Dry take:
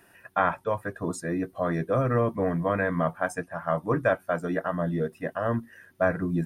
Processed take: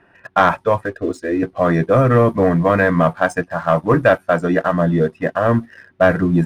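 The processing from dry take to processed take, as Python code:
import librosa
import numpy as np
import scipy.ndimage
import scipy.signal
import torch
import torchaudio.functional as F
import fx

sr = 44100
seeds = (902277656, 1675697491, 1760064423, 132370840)

y = fx.fixed_phaser(x, sr, hz=390.0, stages=4, at=(0.86, 1.43))
y = fx.env_lowpass(y, sr, base_hz=2200.0, full_db=-19.0)
y = fx.leveller(y, sr, passes=1)
y = F.gain(torch.from_numpy(y), 8.0).numpy()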